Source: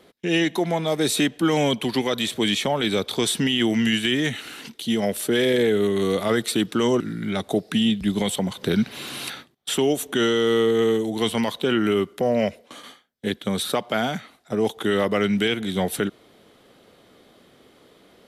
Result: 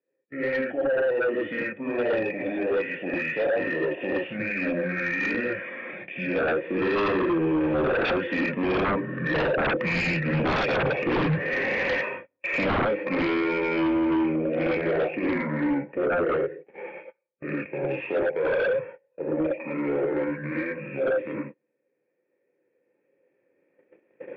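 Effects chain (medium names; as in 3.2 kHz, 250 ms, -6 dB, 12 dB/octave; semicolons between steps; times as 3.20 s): coarse spectral quantiser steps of 15 dB; recorder AGC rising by 8.2 dB/s; Doppler pass-by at 8.10 s, 17 m/s, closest 17 m; high-pass 320 Hz 12 dB/octave; in parallel at +0.5 dB: compression, threshold -38 dBFS, peak gain reduction 15.5 dB; on the sum: tape speed -25%; cascade formant filter e; on a send: filtered feedback delay 80 ms, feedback 67%, low-pass 1.5 kHz, level -23 dB; on the sum: gated-style reverb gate 130 ms rising, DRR -5 dB; sine folder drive 16 dB, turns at -18 dBFS; gate -36 dBFS, range -24 dB; distance through air 230 m; trim -1.5 dB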